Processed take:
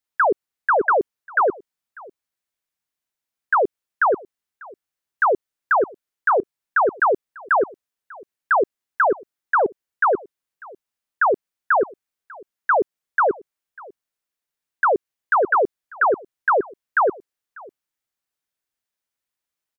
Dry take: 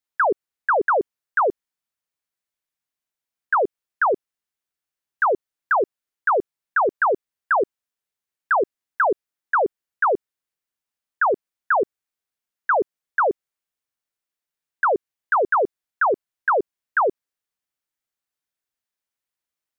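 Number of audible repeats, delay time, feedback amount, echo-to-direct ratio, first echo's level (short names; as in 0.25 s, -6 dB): 1, 0.595 s, no steady repeat, -23.0 dB, -23.0 dB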